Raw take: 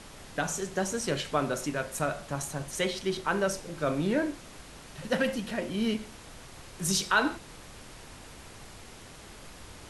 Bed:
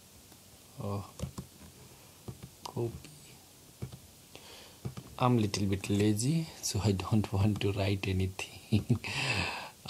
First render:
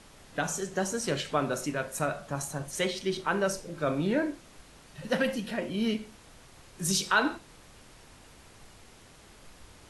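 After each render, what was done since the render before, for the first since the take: noise print and reduce 6 dB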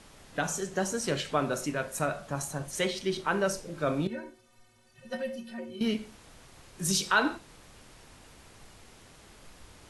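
4.07–5.81 metallic resonator 110 Hz, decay 0.3 s, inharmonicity 0.03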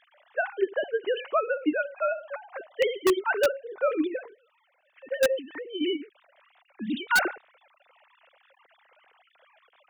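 sine-wave speech; in parallel at -4 dB: wrapped overs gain 17.5 dB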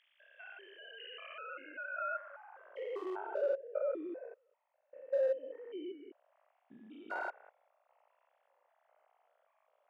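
stepped spectrum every 0.2 s; band-pass sweep 3200 Hz -> 650 Hz, 0.83–3.36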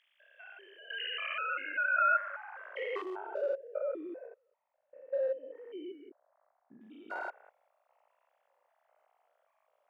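0.9–3.02 bell 2000 Hz +15 dB 2.1 oct; 4.27–5.56 air absorption 270 m; 6.09–6.81 LPF 1600 Hz 24 dB/oct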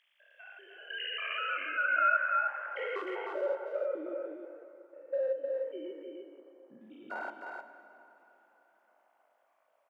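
echo 0.308 s -4.5 dB; plate-style reverb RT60 3.7 s, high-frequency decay 0.7×, DRR 10 dB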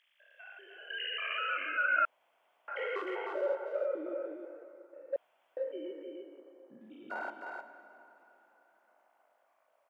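2.05–2.68 room tone; 5.16–5.57 room tone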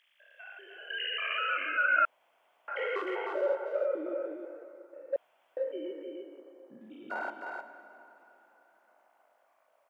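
gain +3 dB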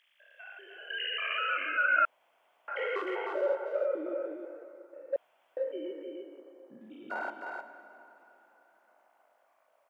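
nothing audible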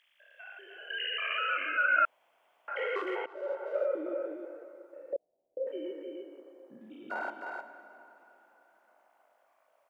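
3.26–3.77 fade in, from -20.5 dB; 5.13–5.67 steep low-pass 560 Hz

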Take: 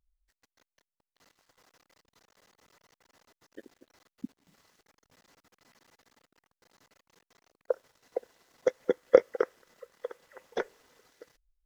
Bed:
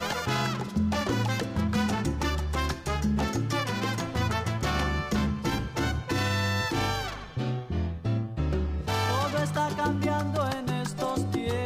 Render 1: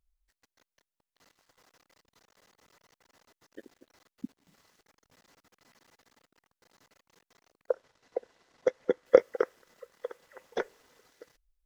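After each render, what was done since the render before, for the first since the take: 7.72–9.06 air absorption 64 m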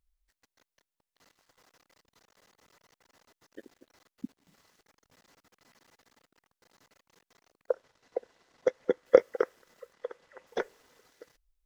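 9.93–10.47 air absorption 64 m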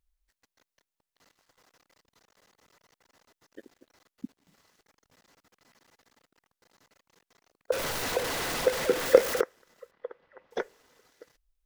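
7.72–9.41 zero-crossing step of -25.5 dBFS; 9.91–10.51 air absorption 290 m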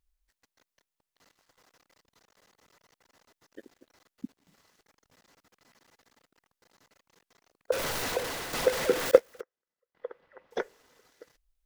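8–8.53 fade out, to -7.5 dB; 9.11–9.95 upward expander 2.5:1, over -33 dBFS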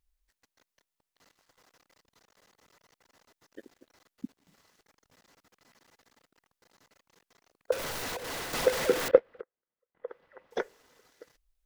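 7.73–8.45 compressor, threshold -36 dBFS; 9.08–10.08 air absorption 450 m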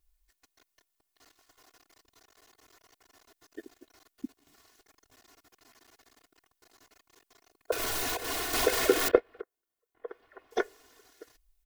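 high shelf 8300 Hz +6 dB; comb 2.8 ms, depth 94%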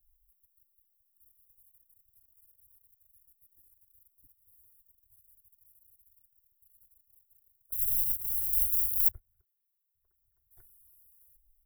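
inverse Chebyshev band-stop 210–6100 Hz, stop band 40 dB; high shelf 11000 Hz +11 dB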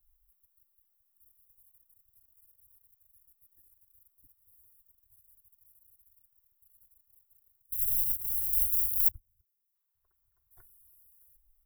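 7.61–9.75 spectral gain 340–4700 Hz -20 dB; bell 1100 Hz +9 dB 1.2 oct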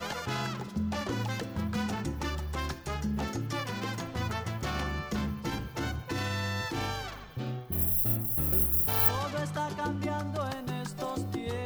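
add bed -5.5 dB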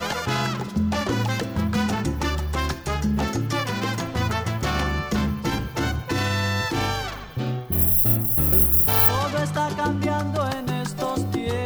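gain +9 dB; limiter -3 dBFS, peak gain reduction 3 dB

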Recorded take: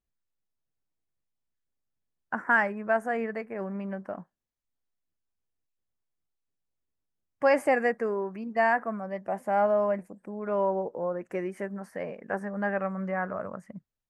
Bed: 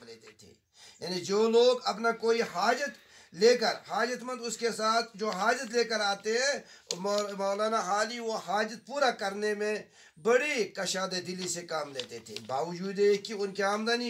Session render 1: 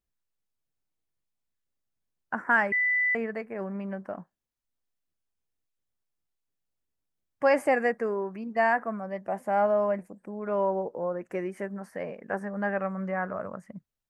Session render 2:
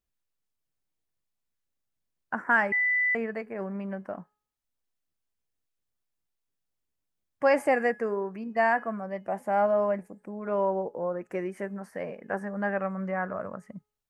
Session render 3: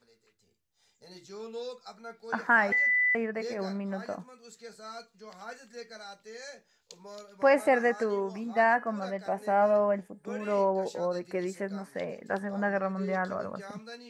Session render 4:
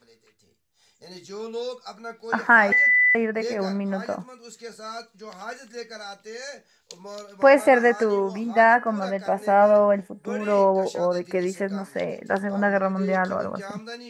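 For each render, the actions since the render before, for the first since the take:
2.72–3.15 bleep 1990 Hz -22 dBFS
de-hum 421.3 Hz, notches 28
add bed -16 dB
gain +7.5 dB

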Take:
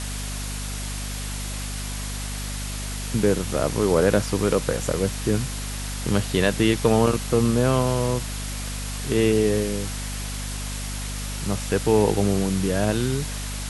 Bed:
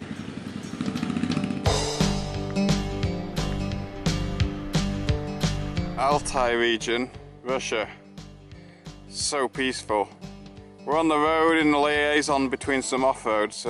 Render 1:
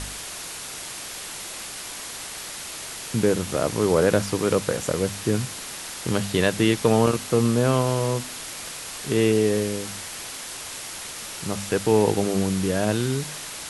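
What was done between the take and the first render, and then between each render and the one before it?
de-hum 50 Hz, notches 5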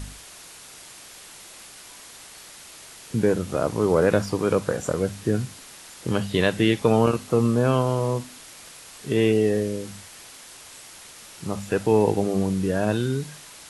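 noise print and reduce 9 dB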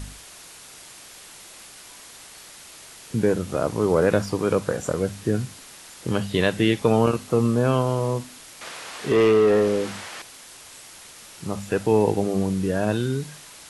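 8.61–10.22 overdrive pedal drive 22 dB, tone 1500 Hz, clips at -9.5 dBFS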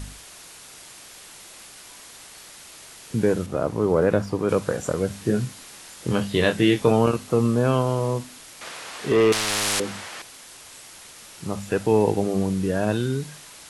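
3.46–4.49 high shelf 2200 Hz -8.5 dB; 5.08–6.91 doubler 24 ms -6 dB; 9.32–9.8 spectral compressor 10:1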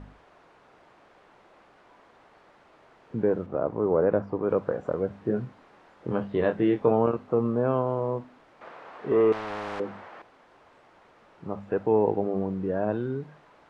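LPF 1000 Hz 12 dB/oct; low shelf 230 Hz -11.5 dB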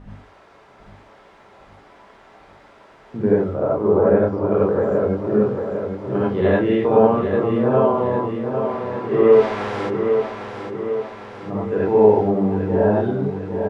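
on a send: feedback echo 0.802 s, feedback 56%, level -7 dB; on the sum: non-linear reverb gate 0.12 s rising, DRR -7 dB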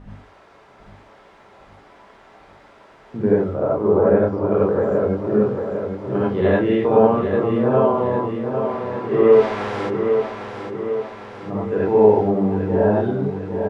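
nothing audible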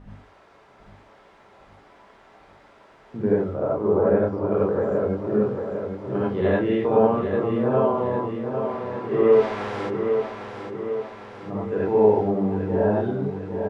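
gain -4 dB

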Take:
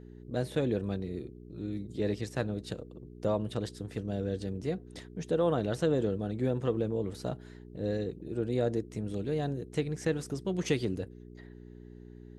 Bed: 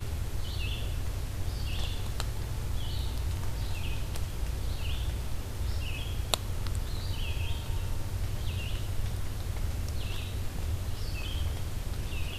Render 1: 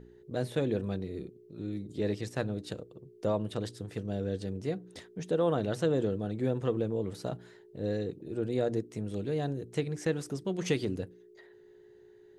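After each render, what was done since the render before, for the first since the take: de-hum 60 Hz, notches 5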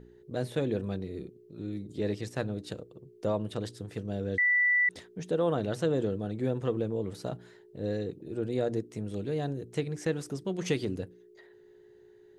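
4.38–4.89 bleep 1970 Hz -21.5 dBFS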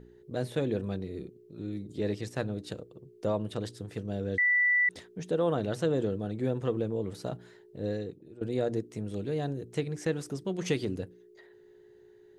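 7.87–8.41 fade out, to -18 dB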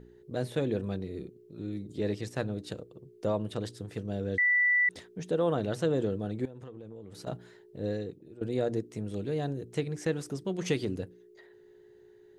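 6.45–7.27 compressor 10:1, threshold -41 dBFS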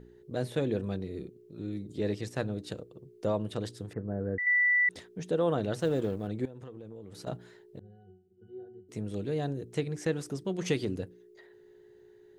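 3.93–4.47 steep low-pass 1800 Hz 48 dB/oct; 5.8–6.28 G.711 law mismatch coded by A; 7.79–8.89 octave resonator F#, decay 0.56 s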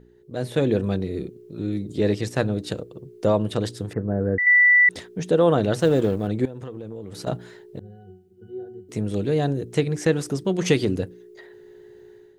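AGC gain up to 10 dB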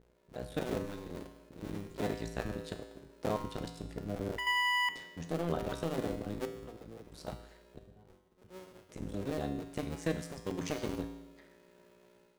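cycle switcher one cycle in 2, muted; resonator 56 Hz, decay 1 s, harmonics odd, mix 80%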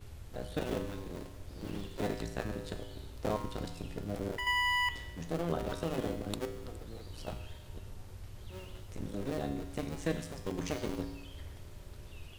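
add bed -14.5 dB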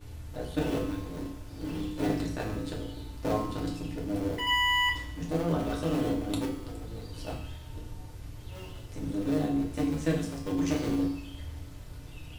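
FDN reverb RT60 0.47 s, low-frequency decay 1.55×, high-frequency decay 0.9×, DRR -1.5 dB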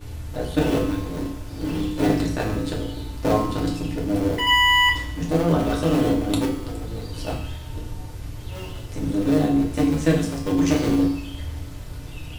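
gain +9 dB

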